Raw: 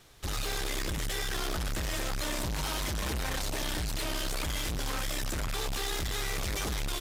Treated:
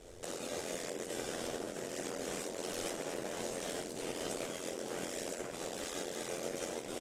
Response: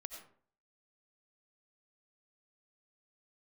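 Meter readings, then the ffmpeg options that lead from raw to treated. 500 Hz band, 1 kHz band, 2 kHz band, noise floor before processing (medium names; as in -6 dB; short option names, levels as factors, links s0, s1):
+1.0 dB, -7.0 dB, -9.5 dB, -33 dBFS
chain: -filter_complex "[0:a]aemphasis=mode=reproduction:type=50fm,bandreject=f=50:t=h:w=6,bandreject=f=100:t=h:w=6,bandreject=f=150:t=h:w=6,bandreject=f=200:t=h:w=6,bandreject=f=250:t=h:w=6,bandreject=f=300:t=h:w=6,bandreject=f=350:t=h:w=6,asplit=2[s0][s1];[s1]adelay=239.1,volume=0.0316,highshelf=f=4000:g=-5.38[s2];[s0][s2]amix=inputs=2:normalize=0[s3];[1:a]atrim=start_sample=2205,atrim=end_sample=6174,asetrate=66150,aresample=44100[s4];[s3][s4]afir=irnorm=-1:irlink=0,aeval=exprs='0.0355*(cos(1*acos(clip(val(0)/0.0355,-1,1)))-cos(1*PI/2))+0.000316*(cos(6*acos(clip(val(0)/0.0355,-1,1)))-cos(6*PI/2))':c=same,asplit=2[s5][s6];[s6]asoftclip=type=tanh:threshold=0.0133,volume=0.398[s7];[s5][s7]amix=inputs=2:normalize=0,acompressor=threshold=0.00794:ratio=16,flanger=delay=17:depth=5.7:speed=0.72,afftfilt=real='re*lt(hypot(re,im),0.00891)':imag='im*lt(hypot(re,im),0.00891)':win_size=1024:overlap=0.75,equalizer=f=125:t=o:w=1:g=-10,equalizer=f=250:t=o:w=1:g=3,equalizer=f=500:t=o:w=1:g=10,equalizer=f=1000:t=o:w=1:g=-10,equalizer=f=2000:t=o:w=1:g=-5,equalizer=f=4000:t=o:w=1:g=-8,equalizer=f=8000:t=o:w=1:g=8,aeval=exprs='val(0)*sin(2*PI*43*n/s)':c=same,volume=7.08" -ar 44100 -c:a aac -b:a 48k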